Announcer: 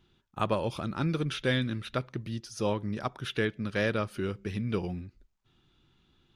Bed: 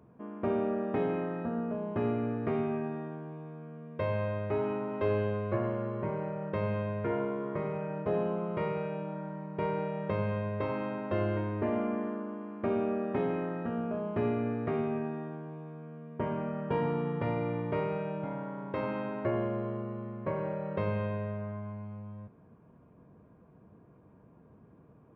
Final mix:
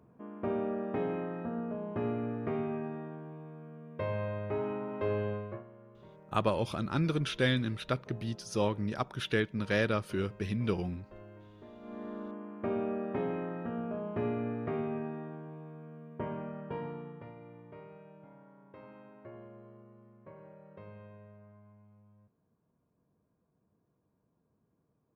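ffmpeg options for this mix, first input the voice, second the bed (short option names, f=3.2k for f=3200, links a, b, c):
-filter_complex "[0:a]adelay=5950,volume=-0.5dB[a];[1:a]volume=15dB,afade=t=out:st=5.32:d=0.32:silence=0.125893,afade=t=in:st=11.8:d=0.45:silence=0.125893,afade=t=out:st=16.03:d=1.3:silence=0.16788[b];[a][b]amix=inputs=2:normalize=0"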